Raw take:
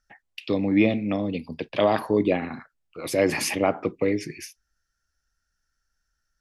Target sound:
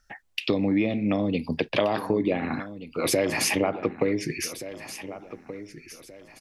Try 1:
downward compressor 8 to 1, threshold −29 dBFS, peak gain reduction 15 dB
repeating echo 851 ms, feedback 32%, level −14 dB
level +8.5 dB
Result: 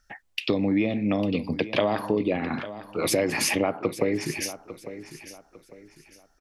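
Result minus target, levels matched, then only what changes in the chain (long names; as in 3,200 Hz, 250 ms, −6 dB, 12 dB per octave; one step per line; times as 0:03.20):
echo 626 ms early
change: repeating echo 1,477 ms, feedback 32%, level −14 dB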